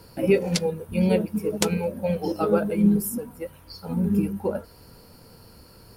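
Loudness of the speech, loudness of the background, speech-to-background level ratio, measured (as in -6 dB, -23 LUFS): -24.5 LUFS, -31.0 LUFS, 6.5 dB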